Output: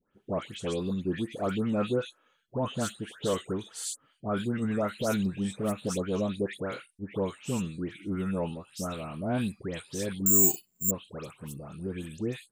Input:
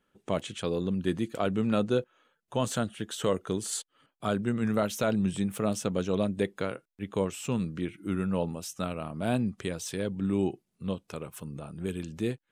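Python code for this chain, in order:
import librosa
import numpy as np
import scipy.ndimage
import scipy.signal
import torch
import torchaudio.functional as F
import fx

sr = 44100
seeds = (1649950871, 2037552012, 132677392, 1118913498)

y = fx.dispersion(x, sr, late='highs', ms=149.0, hz=1900.0)
y = fx.resample_bad(y, sr, factor=6, down='filtered', up='zero_stuff', at=(10.26, 10.91))
y = F.gain(torch.from_numpy(y), -1.5).numpy()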